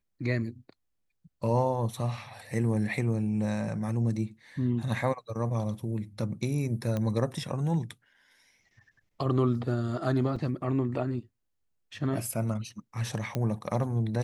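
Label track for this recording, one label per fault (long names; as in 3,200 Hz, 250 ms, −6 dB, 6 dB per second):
6.970000	6.970000	click −19 dBFS
10.360000	10.360000	drop-out 4.6 ms
13.350000	13.350000	click −17 dBFS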